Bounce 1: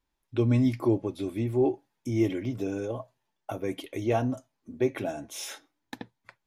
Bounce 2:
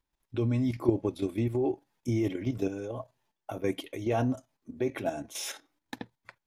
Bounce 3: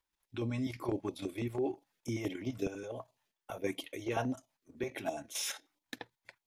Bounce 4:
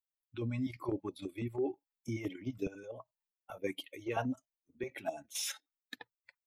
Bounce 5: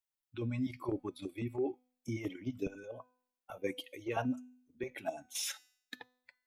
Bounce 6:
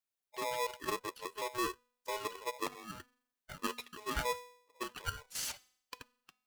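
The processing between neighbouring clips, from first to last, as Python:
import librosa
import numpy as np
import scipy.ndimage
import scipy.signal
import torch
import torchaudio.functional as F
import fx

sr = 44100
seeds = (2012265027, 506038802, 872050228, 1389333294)

y1 = fx.level_steps(x, sr, step_db=10)
y1 = y1 * librosa.db_to_amplitude(3.5)
y2 = fx.low_shelf(y1, sr, hz=240.0, db=-11.5)
y2 = fx.filter_held_notch(y2, sr, hz=12.0, low_hz=220.0, high_hz=1600.0)
y3 = fx.bin_expand(y2, sr, power=1.5)
y3 = y3 * librosa.db_to_amplitude(1.0)
y4 = fx.comb_fb(y3, sr, f0_hz=250.0, decay_s=0.62, harmonics='all', damping=0.0, mix_pct=50)
y4 = y4 * librosa.db_to_amplitude(5.5)
y5 = y4 * np.sign(np.sin(2.0 * np.pi * 740.0 * np.arange(len(y4)) / sr))
y5 = y5 * librosa.db_to_amplitude(-1.0)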